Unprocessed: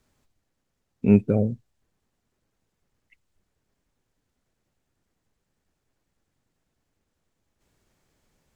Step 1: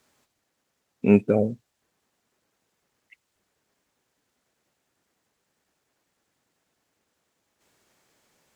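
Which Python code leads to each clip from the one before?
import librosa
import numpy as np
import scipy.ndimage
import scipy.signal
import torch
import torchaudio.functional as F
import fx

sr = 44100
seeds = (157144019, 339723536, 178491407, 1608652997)

y = fx.highpass(x, sr, hz=450.0, slope=6)
y = y * librosa.db_to_amplitude(6.5)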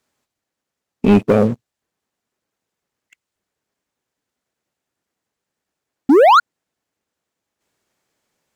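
y = fx.spec_paint(x, sr, seeds[0], shape='rise', start_s=6.09, length_s=0.31, low_hz=250.0, high_hz=1500.0, level_db=-16.0)
y = fx.leveller(y, sr, passes=3)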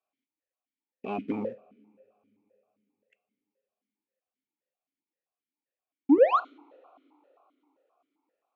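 y = fx.rev_double_slope(x, sr, seeds[1], early_s=0.46, late_s=3.8, knee_db=-21, drr_db=14.5)
y = fx.vowel_held(y, sr, hz=7.6)
y = y * librosa.db_to_amplitude(-4.0)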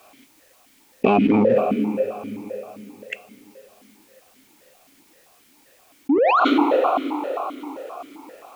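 y = fx.env_flatten(x, sr, amount_pct=100)
y = y * librosa.db_to_amplitude(-1.5)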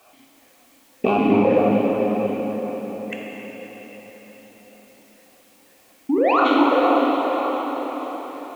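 y = fx.rev_plate(x, sr, seeds[2], rt60_s=4.9, hf_ratio=0.95, predelay_ms=0, drr_db=-2.0)
y = y * librosa.db_to_amplitude(-3.0)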